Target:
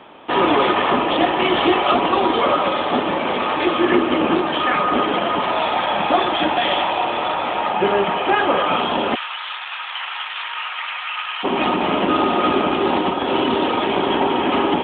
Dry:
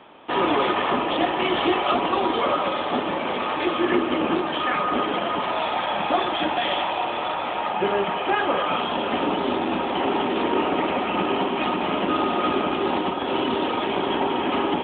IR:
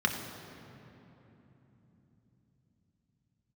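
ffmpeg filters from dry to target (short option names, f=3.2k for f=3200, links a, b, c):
-filter_complex "[0:a]asplit=3[a][b][c];[a]afade=t=out:st=9.14:d=0.02[d];[b]highpass=f=1.3k:w=0.5412,highpass=f=1.3k:w=1.3066,afade=t=in:st=9.14:d=0.02,afade=t=out:st=11.43:d=0.02[e];[c]afade=t=in:st=11.43:d=0.02[f];[d][e][f]amix=inputs=3:normalize=0,volume=5dB"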